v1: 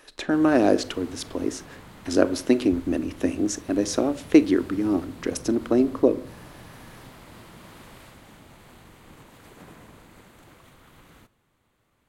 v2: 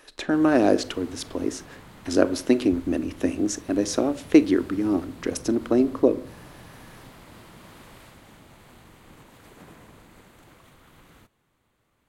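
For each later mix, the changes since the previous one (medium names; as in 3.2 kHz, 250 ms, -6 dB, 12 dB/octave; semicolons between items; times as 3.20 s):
background: send off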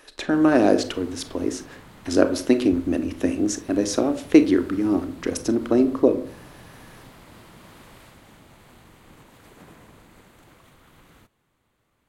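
speech: send +7.0 dB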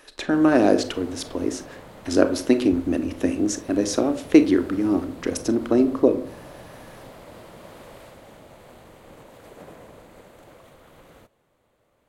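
background: add peaking EQ 560 Hz +11.5 dB 0.93 oct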